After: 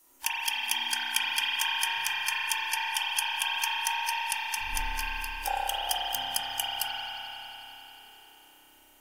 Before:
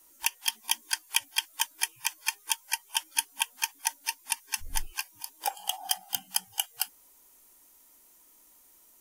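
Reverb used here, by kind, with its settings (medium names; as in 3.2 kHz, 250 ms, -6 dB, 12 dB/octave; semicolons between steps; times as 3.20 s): spring tank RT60 4 s, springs 30 ms, chirp 60 ms, DRR -9 dB; trim -3 dB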